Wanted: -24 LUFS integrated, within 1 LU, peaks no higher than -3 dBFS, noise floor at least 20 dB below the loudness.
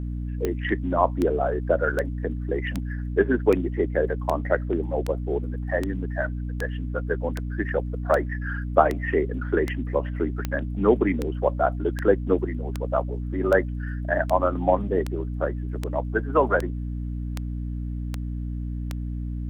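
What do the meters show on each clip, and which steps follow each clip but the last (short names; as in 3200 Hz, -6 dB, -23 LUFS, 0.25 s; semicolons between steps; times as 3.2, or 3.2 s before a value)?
clicks 25; hum 60 Hz; harmonics up to 300 Hz; hum level -27 dBFS; loudness -26.0 LUFS; peak -2.0 dBFS; loudness target -24.0 LUFS
-> de-click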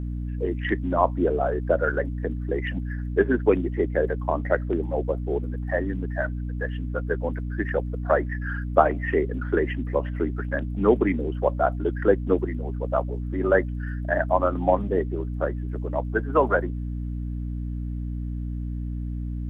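clicks 0; hum 60 Hz; harmonics up to 300 Hz; hum level -27 dBFS
-> notches 60/120/180/240/300 Hz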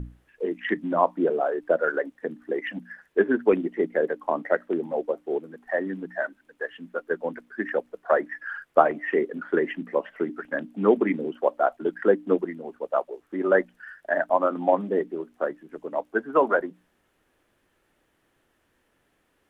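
hum none; loudness -26.5 LUFS; peak -2.0 dBFS; loudness target -24.0 LUFS
-> gain +2.5 dB; limiter -3 dBFS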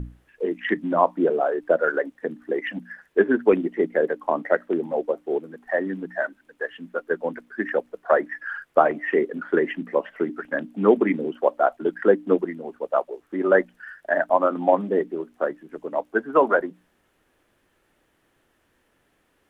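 loudness -24.0 LUFS; peak -3.0 dBFS; noise floor -67 dBFS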